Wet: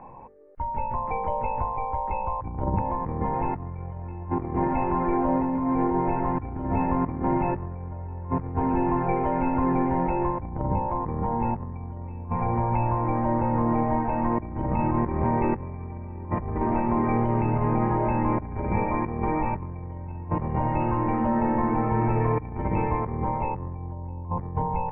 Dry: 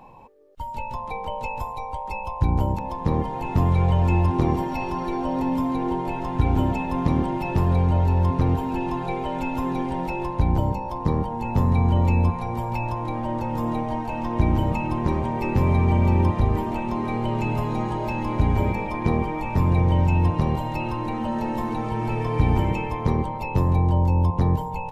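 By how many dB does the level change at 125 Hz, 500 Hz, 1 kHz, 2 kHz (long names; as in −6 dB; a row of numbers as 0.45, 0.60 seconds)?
−7.0, −0.5, +1.0, −4.5 decibels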